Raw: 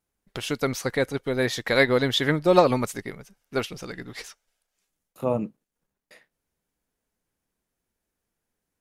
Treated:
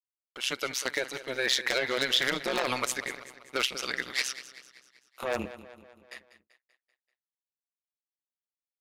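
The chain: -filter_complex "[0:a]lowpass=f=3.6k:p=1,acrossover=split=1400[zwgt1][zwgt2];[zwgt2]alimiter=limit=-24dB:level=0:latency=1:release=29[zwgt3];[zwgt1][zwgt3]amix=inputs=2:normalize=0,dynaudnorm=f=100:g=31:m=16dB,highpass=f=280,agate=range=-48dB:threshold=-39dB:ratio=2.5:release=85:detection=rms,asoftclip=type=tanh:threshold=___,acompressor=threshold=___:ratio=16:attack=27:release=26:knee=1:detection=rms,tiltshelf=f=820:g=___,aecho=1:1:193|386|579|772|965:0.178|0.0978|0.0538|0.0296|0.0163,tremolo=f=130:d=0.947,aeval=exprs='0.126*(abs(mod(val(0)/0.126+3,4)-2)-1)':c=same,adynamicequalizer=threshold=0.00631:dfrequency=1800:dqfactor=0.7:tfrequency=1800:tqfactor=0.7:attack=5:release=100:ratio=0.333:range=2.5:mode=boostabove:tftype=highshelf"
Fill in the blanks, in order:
-14.5dB, -24dB, -7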